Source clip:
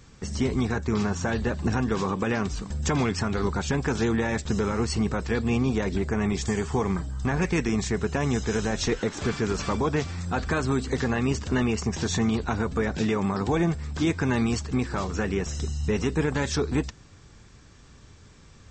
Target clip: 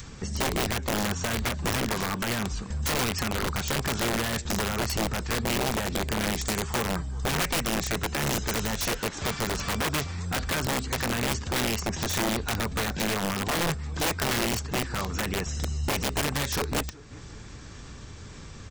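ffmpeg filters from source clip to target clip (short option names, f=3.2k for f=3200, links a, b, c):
-filter_complex "[0:a]adynamicequalizer=threshold=0.0112:dfrequency=340:dqfactor=0.72:tfrequency=340:tqfactor=0.72:attack=5:release=100:ratio=0.375:range=2:mode=cutabove:tftype=bell,acompressor=mode=upward:threshold=-33dB:ratio=2.5,asplit=2[a][b];[b]aecho=0:1:378|756|1134:0.0708|0.0368|0.0191[c];[a][c]amix=inputs=2:normalize=0,aeval=exprs='(mod(11.2*val(0)+1,2)-1)/11.2':c=same"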